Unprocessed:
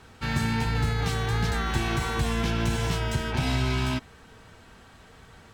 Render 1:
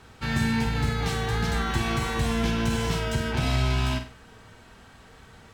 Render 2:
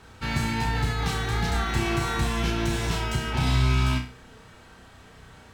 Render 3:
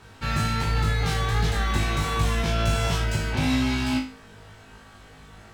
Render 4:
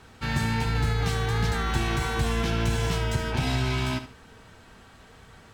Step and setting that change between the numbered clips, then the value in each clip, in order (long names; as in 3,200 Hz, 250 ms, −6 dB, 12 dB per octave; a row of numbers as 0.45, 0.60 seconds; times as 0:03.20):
flutter between parallel walls, walls apart: 8.3, 5.5, 3.3, 12.4 metres